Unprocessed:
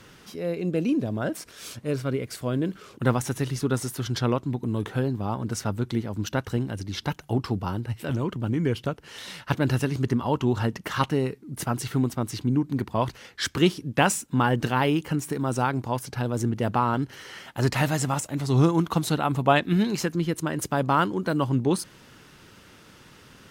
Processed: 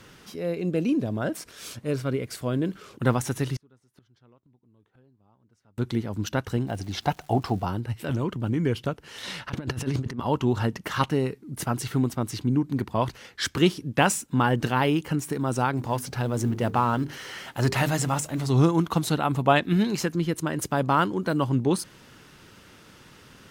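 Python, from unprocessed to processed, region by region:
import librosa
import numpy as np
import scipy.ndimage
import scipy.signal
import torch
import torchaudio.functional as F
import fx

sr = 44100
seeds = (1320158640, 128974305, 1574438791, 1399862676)

y = fx.chain(x, sr, fx.high_shelf(hz=7000.0, db=-11.5),
    fx.gate_flip(shuts_db=-26.0, range_db=-34), at=(3.56, 5.78))
y = fx.peak_eq(y, sr, hz=720.0, db=13.5, octaves=0.39, at=(6.66, 7.65), fade=0.02)
y = fx.dmg_crackle(y, sr, seeds[0], per_s=490.0, level_db=-43.0, at=(6.66, 7.65), fade=0.02)
y = fx.chain(y, sr, fx.high_shelf(hz=10000.0, db=-10.5),
    fx.over_compress(threshold_db=-28.0, ratio=-0.5), at=(9.23, 10.2))
y = fx.chain(y, sr, fx.law_mismatch(coded='mu'),
    fx.hum_notches(base_hz=50, count=9), at=(15.77, 18.5))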